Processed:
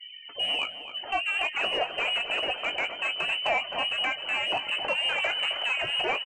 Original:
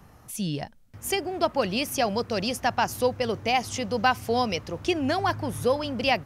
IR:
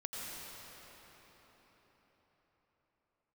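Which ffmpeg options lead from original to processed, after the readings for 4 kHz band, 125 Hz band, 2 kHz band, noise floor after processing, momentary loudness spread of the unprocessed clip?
+6.5 dB, −20.5 dB, +4.0 dB, −44 dBFS, 6 LU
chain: -filter_complex "[0:a]asplit=2[link_01][link_02];[link_02]alimiter=limit=-21.5dB:level=0:latency=1:release=310,volume=-1.5dB[link_03];[link_01][link_03]amix=inputs=2:normalize=0,aemphasis=mode=production:type=75fm,asoftclip=type=hard:threshold=-15dB,acompressor=threshold=-22dB:ratio=12,aeval=exprs='0.178*(cos(1*acos(clip(val(0)/0.178,-1,1)))-cos(1*PI/2))+0.00501*(cos(2*acos(clip(val(0)/0.178,-1,1)))-cos(2*PI/2))+0.0794*(cos(3*acos(clip(val(0)/0.178,-1,1)))-cos(3*PI/2))+0.0631*(cos(5*acos(clip(val(0)/0.178,-1,1)))-cos(5*PI/2))+0.00447*(cos(6*acos(clip(val(0)/0.178,-1,1)))-cos(6*PI/2))':channel_layout=same,afftfilt=real='re*gte(hypot(re,im),0.0141)':imag='im*gte(hypot(re,im),0.0141)':win_size=1024:overlap=0.75,lowpass=frequency=2600:width_type=q:width=0.5098,lowpass=frequency=2600:width_type=q:width=0.6013,lowpass=frequency=2600:width_type=q:width=0.9,lowpass=frequency=2600:width_type=q:width=2.563,afreqshift=-3100,asoftclip=type=tanh:threshold=-21.5dB,equalizer=frequency=650:width=1.2:gain=14.5,asplit=2[link_04][link_05];[link_05]adelay=19,volume=-9.5dB[link_06];[link_04][link_06]amix=inputs=2:normalize=0,asplit=2[link_07][link_08];[link_08]adelay=263,lowpass=frequency=2000:poles=1,volume=-9dB,asplit=2[link_09][link_10];[link_10]adelay=263,lowpass=frequency=2000:poles=1,volume=0.55,asplit=2[link_11][link_12];[link_12]adelay=263,lowpass=frequency=2000:poles=1,volume=0.55,asplit=2[link_13][link_14];[link_14]adelay=263,lowpass=frequency=2000:poles=1,volume=0.55,asplit=2[link_15][link_16];[link_16]adelay=263,lowpass=frequency=2000:poles=1,volume=0.55,asplit=2[link_17][link_18];[link_18]adelay=263,lowpass=frequency=2000:poles=1,volume=0.55[link_19];[link_07][link_09][link_11][link_13][link_15][link_17][link_19]amix=inputs=7:normalize=0"

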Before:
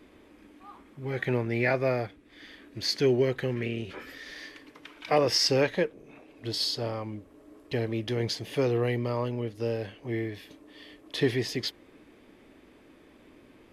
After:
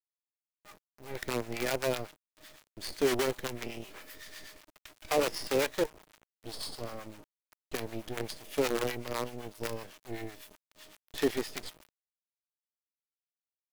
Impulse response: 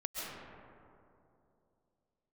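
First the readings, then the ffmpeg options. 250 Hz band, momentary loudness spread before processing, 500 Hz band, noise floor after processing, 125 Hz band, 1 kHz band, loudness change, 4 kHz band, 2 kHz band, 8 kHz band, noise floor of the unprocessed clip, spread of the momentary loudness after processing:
−6.5 dB, 18 LU, −5.0 dB, below −85 dBFS, −13.0 dB, −3.0 dB, −5.5 dB, −8.0 dB, −4.5 dB, −1.5 dB, −56 dBFS, 18 LU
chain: -filter_complex "[0:a]highpass=240,aemphasis=mode=production:type=50fm,agate=range=-33dB:threshold=-44dB:ratio=3:detection=peak,acrossover=split=3300[link_01][link_02];[link_02]acompressor=threshold=-38dB:ratio=4:attack=1:release=60[link_03];[link_01][link_03]amix=inputs=2:normalize=0,acrossover=split=690[link_04][link_05];[link_05]alimiter=limit=-22.5dB:level=0:latency=1:release=415[link_06];[link_04][link_06]amix=inputs=2:normalize=0,aeval=exprs='val(0)+0.00251*sin(2*PI*620*n/s)':channel_layout=same,acrusher=bits=5:dc=4:mix=0:aa=0.000001,acrossover=split=740[link_07][link_08];[link_07]aeval=exprs='val(0)*(1-0.7/2+0.7/2*cos(2*PI*7.9*n/s))':channel_layout=same[link_09];[link_08]aeval=exprs='val(0)*(1-0.7/2-0.7/2*cos(2*PI*7.9*n/s))':channel_layout=same[link_10];[link_09][link_10]amix=inputs=2:normalize=0"

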